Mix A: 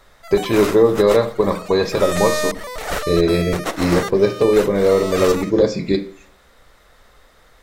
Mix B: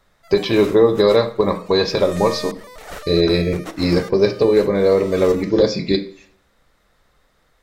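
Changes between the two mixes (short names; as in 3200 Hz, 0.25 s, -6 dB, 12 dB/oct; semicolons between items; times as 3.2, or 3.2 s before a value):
speech: add synth low-pass 4800 Hz, resonance Q 2.4; background -10.0 dB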